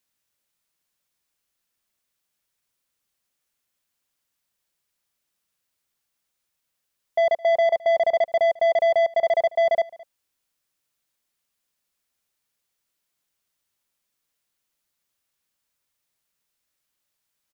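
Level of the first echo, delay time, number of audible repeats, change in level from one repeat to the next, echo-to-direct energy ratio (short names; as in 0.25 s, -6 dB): -22.5 dB, 0.214 s, 1, no steady repeat, -22.5 dB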